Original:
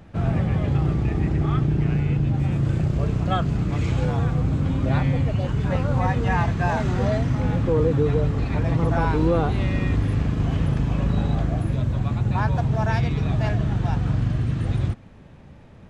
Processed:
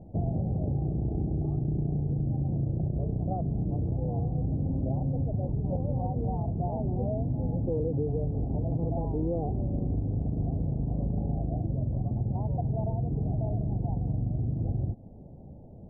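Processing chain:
downward compressor, threshold −25 dBFS, peak gain reduction 9.5 dB
elliptic low-pass filter 750 Hz, stop band 50 dB

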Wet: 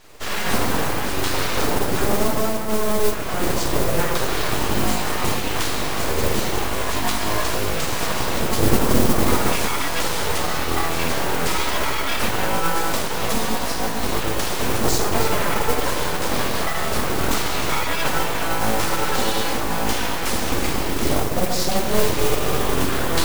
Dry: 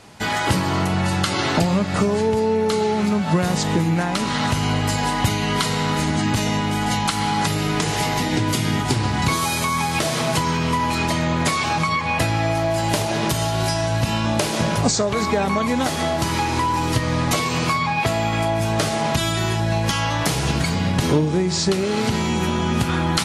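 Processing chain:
0:02.56–0:03.12: high-frequency loss of the air 470 metres
flanger 0.77 Hz, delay 2.8 ms, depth 9.1 ms, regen +50%
0:08.57–0:09.53: tilt shelving filter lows +5.5 dB, about 1,300 Hz
convolution reverb RT60 1.4 s, pre-delay 4 ms, DRR −2.5 dB
full-wave rectification
noise that follows the level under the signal 14 dB

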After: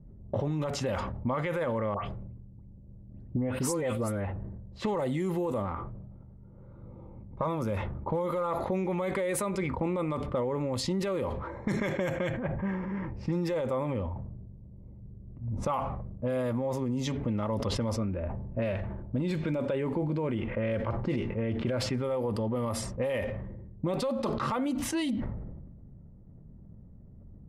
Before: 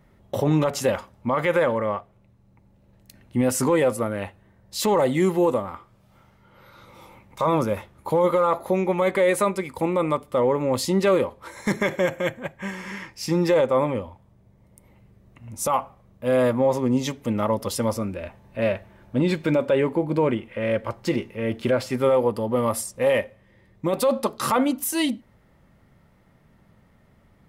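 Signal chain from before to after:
low-pass that shuts in the quiet parts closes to 380 Hz, open at −17.5 dBFS
low-shelf EQ 160 Hz +10.5 dB
brickwall limiter −14.5 dBFS, peak gain reduction 7.5 dB
downward compressor 4 to 1, threshold −29 dBFS, peak gain reduction 10 dB
0:01.94–0:04.25: all-pass dispersion highs, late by 138 ms, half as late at 2,400 Hz
level that may fall only so fast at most 32 dB per second

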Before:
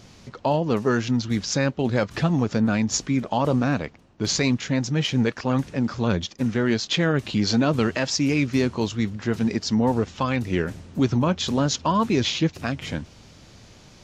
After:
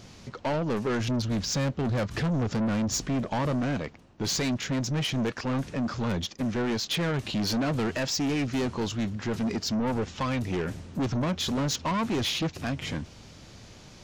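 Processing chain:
0:01.00–0:03.52: low-shelf EQ 160 Hz +7.5 dB
soft clipping −24 dBFS, distortion −8 dB

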